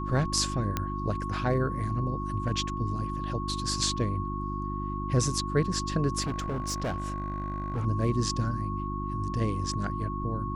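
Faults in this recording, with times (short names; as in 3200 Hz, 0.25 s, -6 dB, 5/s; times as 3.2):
hum 50 Hz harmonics 7 -34 dBFS
tone 1100 Hz -35 dBFS
0.77 pop -13 dBFS
6.21–7.86 clipped -27 dBFS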